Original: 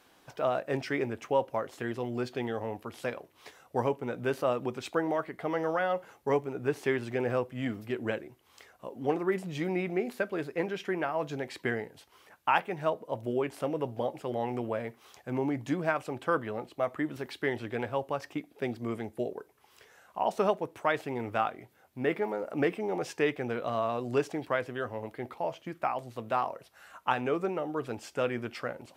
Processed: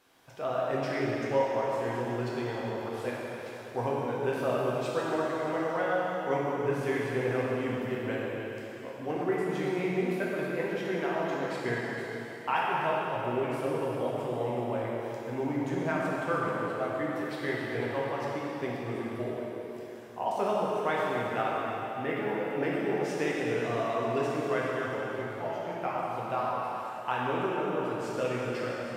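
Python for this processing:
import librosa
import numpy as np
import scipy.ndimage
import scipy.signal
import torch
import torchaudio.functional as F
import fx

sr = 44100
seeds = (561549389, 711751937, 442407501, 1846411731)

y = fx.rev_plate(x, sr, seeds[0], rt60_s=3.7, hf_ratio=1.0, predelay_ms=0, drr_db=-6.0)
y = F.gain(torch.from_numpy(y), -5.5).numpy()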